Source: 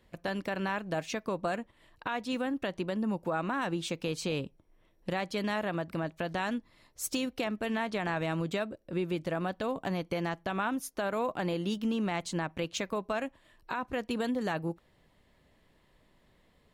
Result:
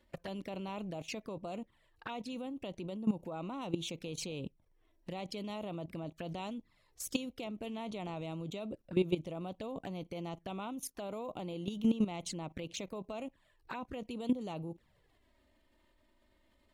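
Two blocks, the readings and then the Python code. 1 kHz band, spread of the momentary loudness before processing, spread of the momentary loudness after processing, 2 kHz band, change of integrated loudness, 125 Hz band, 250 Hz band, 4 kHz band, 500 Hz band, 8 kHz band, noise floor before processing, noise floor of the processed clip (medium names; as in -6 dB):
-10.0 dB, 5 LU, 10 LU, -14.0 dB, -6.0 dB, -5.0 dB, -4.0 dB, -5.5 dB, -7.0 dB, -4.0 dB, -67 dBFS, -71 dBFS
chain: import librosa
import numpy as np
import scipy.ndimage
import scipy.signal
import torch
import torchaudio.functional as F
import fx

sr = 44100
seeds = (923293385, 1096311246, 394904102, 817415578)

y = fx.env_flanger(x, sr, rest_ms=3.5, full_db=-31.0)
y = fx.level_steps(y, sr, step_db=15)
y = F.gain(torch.from_numpy(y), 4.5).numpy()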